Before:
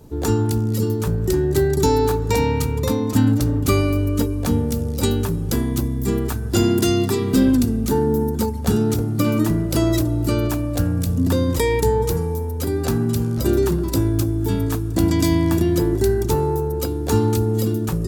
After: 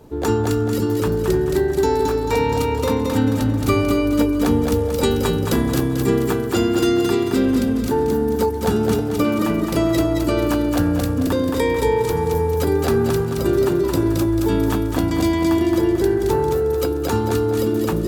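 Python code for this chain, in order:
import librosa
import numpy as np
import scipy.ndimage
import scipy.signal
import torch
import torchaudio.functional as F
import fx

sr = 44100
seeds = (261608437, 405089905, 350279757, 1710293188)

p1 = fx.bass_treble(x, sr, bass_db=-8, treble_db=-8)
p2 = fx.rider(p1, sr, range_db=10, speed_s=0.5)
p3 = p2 + fx.echo_feedback(p2, sr, ms=221, feedback_pct=43, wet_db=-3.5, dry=0)
y = p3 * librosa.db_to_amplitude(2.5)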